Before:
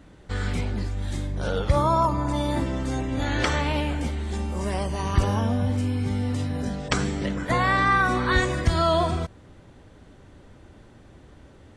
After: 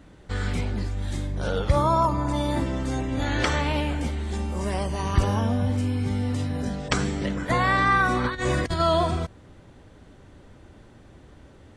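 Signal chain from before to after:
0:08.24–0:08.80: compressor whose output falls as the input rises −25 dBFS, ratio −0.5

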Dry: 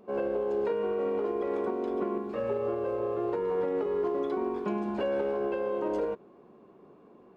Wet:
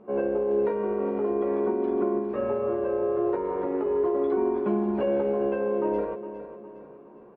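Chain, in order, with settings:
low-pass filter 2,000 Hz 12 dB per octave
double-tracking delay 14 ms −5 dB
repeating echo 409 ms, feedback 44%, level −12.5 dB
level +2.5 dB

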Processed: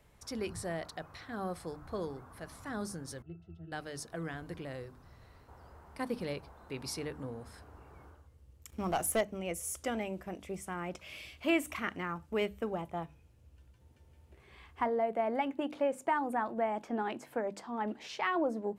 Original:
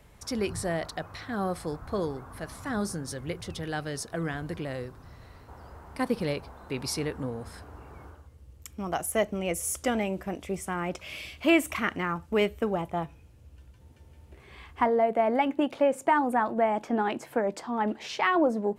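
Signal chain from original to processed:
mains-hum notches 50/100/150/200/250/300 Hz
0:03.22–0:03.72: resonances in every octave E, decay 0.13 s
0:08.69–0:09.21: leveller curve on the samples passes 2
level −7.5 dB

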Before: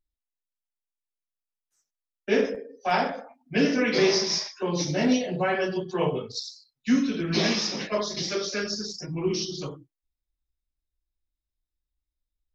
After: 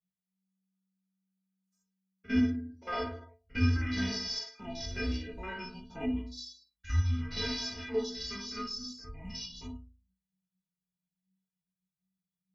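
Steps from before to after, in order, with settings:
spectrum averaged block by block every 50 ms
stiff-string resonator 130 Hz, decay 0.53 s, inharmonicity 0.03
frequency shifter −190 Hz
level +6.5 dB

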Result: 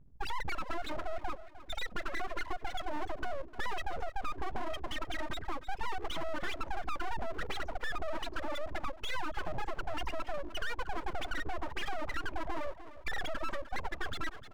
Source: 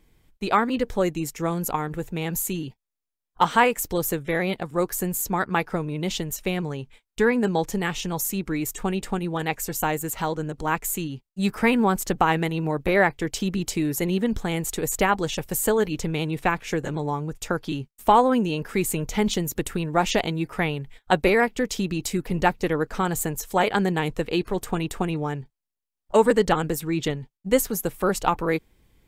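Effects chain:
spectral peaks only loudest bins 2
soft clipping −29 dBFS, distortion −7 dB
repeating echo 605 ms, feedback 36%, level −17.5 dB
dynamic equaliser 280 Hz, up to +4 dB, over −48 dBFS, Q 1.2
downward compressor 4 to 1, threshold −36 dBFS, peak gain reduction 8.5 dB
wrong playback speed 7.5 ips tape played at 15 ips
low-pass filter 1,700 Hz 12 dB per octave
full-wave rectification
level +5.5 dB

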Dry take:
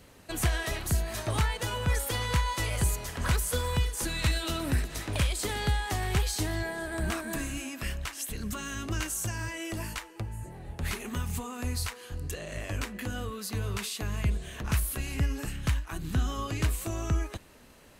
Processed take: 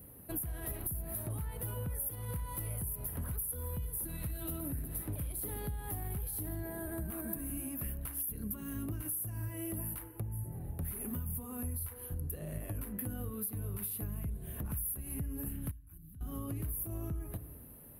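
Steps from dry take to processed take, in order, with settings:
high-pass filter 74 Hz 6 dB per octave
feedback delay network reverb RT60 1 s, low-frequency decay 1.2×, high-frequency decay 0.25×, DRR 14 dB
brickwall limiter −26 dBFS, peak gain reduction 10 dB
drawn EQ curve 140 Hz 0 dB, 7,300 Hz −26 dB, 11,000 Hz +10 dB
downward compressor 6 to 1, threshold −39 dBFS, peak gain reduction 12 dB
0:06.69–0:07.54: notch filter 5,300 Hz, Q 6.8
0:15.71–0:16.21: guitar amp tone stack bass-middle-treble 6-0-2
level +4 dB

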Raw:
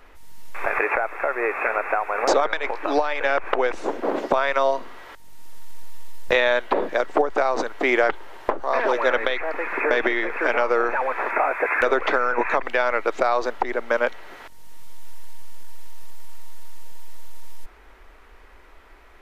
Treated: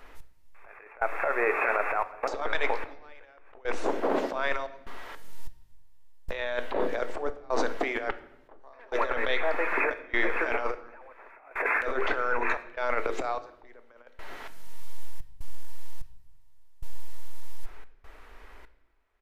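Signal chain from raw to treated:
mains-hum notches 50/100/150/200/250/300/350/400/450 Hz
compressor whose output falls as the input rises −23 dBFS, ratio −0.5
gate pattern "x....xxxxx.xx" 74 BPM −24 dB
far-end echo of a speakerphone 90 ms, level −27 dB
convolution reverb RT60 0.80 s, pre-delay 4 ms, DRR 11 dB
level −3 dB

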